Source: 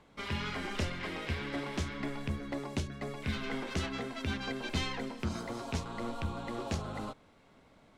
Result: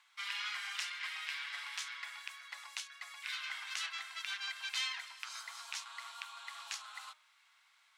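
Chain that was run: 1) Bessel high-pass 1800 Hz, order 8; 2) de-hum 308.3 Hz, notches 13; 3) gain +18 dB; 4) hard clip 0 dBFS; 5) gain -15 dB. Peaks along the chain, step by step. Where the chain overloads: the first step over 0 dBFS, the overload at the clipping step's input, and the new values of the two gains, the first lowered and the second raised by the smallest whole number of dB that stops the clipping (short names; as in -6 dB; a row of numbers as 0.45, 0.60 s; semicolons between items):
-23.0, -23.0, -5.0, -5.0, -20.0 dBFS; no overload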